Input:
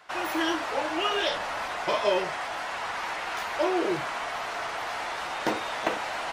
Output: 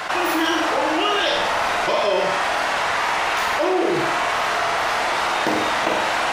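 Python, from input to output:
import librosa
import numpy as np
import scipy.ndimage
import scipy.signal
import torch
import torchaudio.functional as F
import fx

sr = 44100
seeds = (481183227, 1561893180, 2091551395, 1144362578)

y = fx.room_flutter(x, sr, wall_m=8.3, rt60_s=0.61)
y = fx.env_flatten(y, sr, amount_pct=70)
y = y * 10.0 ** (2.0 / 20.0)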